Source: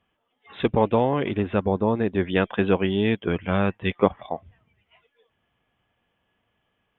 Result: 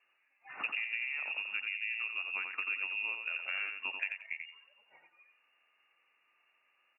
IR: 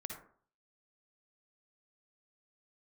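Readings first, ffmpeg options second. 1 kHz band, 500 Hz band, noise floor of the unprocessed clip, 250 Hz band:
-21.5 dB, -37.5 dB, -74 dBFS, under -40 dB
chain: -af "lowpass=f=2.5k:t=q:w=0.5098,lowpass=f=2.5k:t=q:w=0.6013,lowpass=f=2.5k:t=q:w=0.9,lowpass=f=2.5k:t=q:w=2.563,afreqshift=-2900,acompressor=threshold=-36dB:ratio=5,highpass=f=650:p=1,aecho=1:1:88|176|264:0.531|0.117|0.0257"

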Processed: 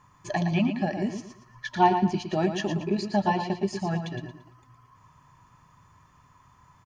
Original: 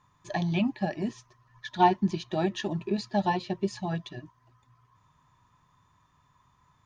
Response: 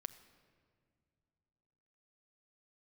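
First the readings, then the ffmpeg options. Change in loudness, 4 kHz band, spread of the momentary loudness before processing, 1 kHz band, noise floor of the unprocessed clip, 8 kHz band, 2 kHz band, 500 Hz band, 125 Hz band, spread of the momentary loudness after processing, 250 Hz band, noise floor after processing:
+2.5 dB, +1.0 dB, 12 LU, +2.0 dB, -67 dBFS, n/a, +3.0 dB, +2.5 dB, +3.0 dB, 14 LU, +2.5 dB, -60 dBFS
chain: -filter_complex "[0:a]bandreject=f=3.7k:w=5.3,asplit=2[a][b];[b]acompressor=threshold=-39dB:ratio=6,volume=2dB[c];[a][c]amix=inputs=2:normalize=0,aecho=1:1:114|228|342|456:0.398|0.123|0.0383|0.0119"

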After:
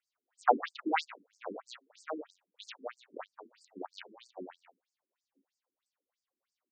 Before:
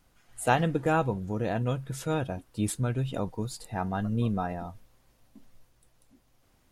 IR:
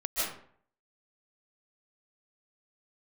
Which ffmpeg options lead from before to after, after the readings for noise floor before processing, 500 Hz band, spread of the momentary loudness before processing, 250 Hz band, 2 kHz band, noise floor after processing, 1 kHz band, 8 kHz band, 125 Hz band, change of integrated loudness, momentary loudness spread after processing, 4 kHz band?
-66 dBFS, -8.5 dB, 10 LU, -13.5 dB, -6.0 dB, under -85 dBFS, -3.0 dB, -19.0 dB, under -35 dB, -6.0 dB, 21 LU, -4.0 dB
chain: -filter_complex "[0:a]bandreject=f=60:t=h:w=6,bandreject=f=120:t=h:w=6,bandreject=f=180:t=h:w=6,acrossover=split=460[a][b];[b]acontrast=69[c];[a][c]amix=inputs=2:normalize=0,asoftclip=type=tanh:threshold=-7dB,aeval=exprs='0.398*(cos(1*acos(clip(val(0)/0.398,-1,1)))-cos(1*PI/2))+0.2*(cos(4*acos(clip(val(0)/0.398,-1,1)))-cos(4*PI/2))+0.0631*(cos(6*acos(clip(val(0)/0.398,-1,1)))-cos(6*PI/2))+0.0631*(cos(7*acos(clip(val(0)/0.398,-1,1)))-cos(7*PI/2))':c=same,asplit=2[d][e];[e]adelay=33,volume=-7dB[f];[d][f]amix=inputs=2:normalize=0,afftfilt=real='re*between(b*sr/1024,290*pow(6400/290,0.5+0.5*sin(2*PI*3.1*pts/sr))/1.41,290*pow(6400/290,0.5+0.5*sin(2*PI*3.1*pts/sr))*1.41)':imag='im*between(b*sr/1024,290*pow(6400/290,0.5+0.5*sin(2*PI*3.1*pts/sr))/1.41,290*pow(6400/290,0.5+0.5*sin(2*PI*3.1*pts/sr))*1.41)':win_size=1024:overlap=0.75"

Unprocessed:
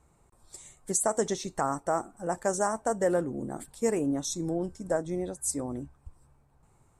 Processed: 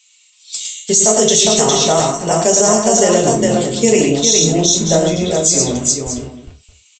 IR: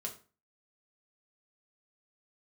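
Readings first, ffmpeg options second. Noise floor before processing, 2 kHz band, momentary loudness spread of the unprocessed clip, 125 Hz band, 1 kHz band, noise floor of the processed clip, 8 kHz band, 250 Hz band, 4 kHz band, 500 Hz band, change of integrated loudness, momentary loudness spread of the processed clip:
-65 dBFS, +14.5 dB, 12 LU, +18.5 dB, +13.5 dB, -52 dBFS, +22.5 dB, +15.5 dB, +29.0 dB, +16.0 dB, +18.0 dB, 9 LU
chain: -filter_complex "[0:a]highshelf=f=2.1k:t=q:w=3:g=11.5,acrossover=split=1800[a][b];[a]aeval=exprs='val(0)*gte(abs(val(0)),0.00473)':c=same[c];[c][b]amix=inputs=2:normalize=0,aecho=1:1:107|408|620:0.562|0.631|0.188[d];[1:a]atrim=start_sample=2205,atrim=end_sample=6174[e];[d][e]afir=irnorm=-1:irlink=0,aresample=16000,aresample=44100,alimiter=level_in=17.5dB:limit=-1dB:release=50:level=0:latency=1,volume=-1dB"

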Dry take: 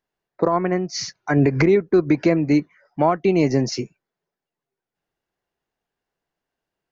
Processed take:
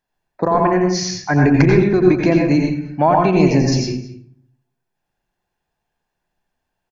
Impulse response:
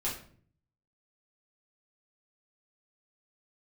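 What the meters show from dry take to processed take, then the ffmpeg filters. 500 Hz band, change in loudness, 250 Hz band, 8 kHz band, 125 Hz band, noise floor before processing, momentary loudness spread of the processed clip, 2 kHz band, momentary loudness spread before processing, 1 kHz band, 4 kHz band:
+3.5 dB, +4.5 dB, +4.5 dB, n/a, +7.0 dB, under -85 dBFS, 9 LU, +5.0 dB, 11 LU, +7.0 dB, +4.5 dB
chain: -filter_complex "[0:a]aecho=1:1:1.2:0.38,asplit=2[a][b];[b]adelay=215.7,volume=-17dB,highshelf=f=4k:g=-4.85[c];[a][c]amix=inputs=2:normalize=0,asplit=2[d][e];[1:a]atrim=start_sample=2205,adelay=85[f];[e][f]afir=irnorm=-1:irlink=0,volume=-5dB[g];[d][g]amix=inputs=2:normalize=0,volume=2dB"

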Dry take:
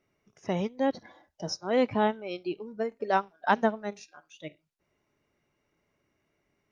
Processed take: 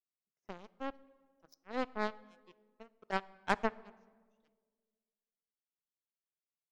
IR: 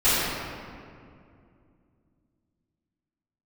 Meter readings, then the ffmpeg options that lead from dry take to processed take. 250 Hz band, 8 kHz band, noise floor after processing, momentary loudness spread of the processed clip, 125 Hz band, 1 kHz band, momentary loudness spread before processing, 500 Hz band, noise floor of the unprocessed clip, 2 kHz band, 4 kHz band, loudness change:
-13.0 dB, n/a, under -85 dBFS, 18 LU, -14.0 dB, -10.0 dB, 19 LU, -13.0 dB, -77 dBFS, -6.5 dB, -10.5 dB, -9.0 dB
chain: -filter_complex "[0:a]highpass=130,aeval=exprs='0.355*(cos(1*acos(clip(val(0)/0.355,-1,1)))-cos(1*PI/2))+0.0794*(cos(3*acos(clip(val(0)/0.355,-1,1)))-cos(3*PI/2))+0.0178*(cos(7*acos(clip(val(0)/0.355,-1,1)))-cos(7*PI/2))':c=same,asplit=2[a][b];[1:a]atrim=start_sample=2205,asetrate=79380,aresample=44100[c];[b][c]afir=irnorm=-1:irlink=0,volume=-34dB[d];[a][d]amix=inputs=2:normalize=0,volume=-4dB"

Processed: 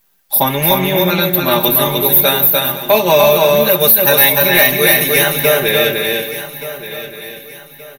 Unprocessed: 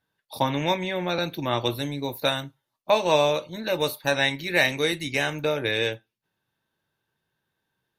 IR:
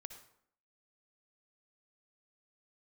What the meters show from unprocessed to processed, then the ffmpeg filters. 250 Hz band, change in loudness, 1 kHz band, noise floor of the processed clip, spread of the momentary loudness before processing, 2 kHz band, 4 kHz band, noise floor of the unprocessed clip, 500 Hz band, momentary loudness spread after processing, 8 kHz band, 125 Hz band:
+11.0 dB, +14.0 dB, +11.0 dB, -39 dBFS, 8 LU, +11.5 dB, +12.0 dB, -82 dBFS, +12.5 dB, 17 LU, +20.0 dB, +11.0 dB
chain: -filter_complex "[0:a]bandreject=f=60:t=h:w=6,bandreject=f=120:t=h:w=6,aecho=1:1:5:0.87,asplit=2[a][b];[b]aecho=0:1:165|297|372|513:0.1|0.668|0.237|0.168[c];[a][c]amix=inputs=2:normalize=0,aexciter=amount=14.3:drive=8.4:freq=11k,apsyclip=11.5dB,acrusher=bits=7:dc=4:mix=0:aa=0.000001,asplit=2[d][e];[e]aecho=0:1:1175|2350|3525:0.2|0.0678|0.0231[f];[d][f]amix=inputs=2:normalize=0,volume=-3.5dB"

